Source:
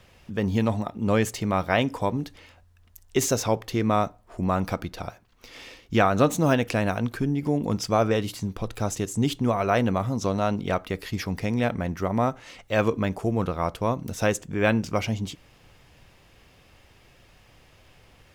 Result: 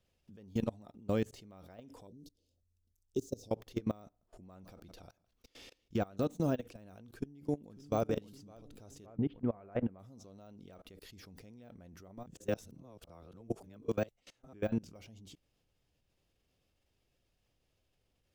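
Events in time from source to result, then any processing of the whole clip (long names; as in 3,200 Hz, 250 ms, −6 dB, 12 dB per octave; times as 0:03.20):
0:02.07–0:03.51: Chebyshev band-stop filter 430–4,900 Hz
0:04.05–0:06.16: single-tap delay 161 ms −21.5 dB
0:07.14–0:08.05: delay throw 560 ms, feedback 45%, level −7 dB
0:09.06–0:09.99: low-pass filter 2,200 Hz 24 dB per octave
0:12.26–0:14.53: reverse
whole clip: de-essing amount 90%; octave-band graphic EQ 125/1,000/2,000 Hz −3/−7/−7 dB; output level in coarse steps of 24 dB; level −6 dB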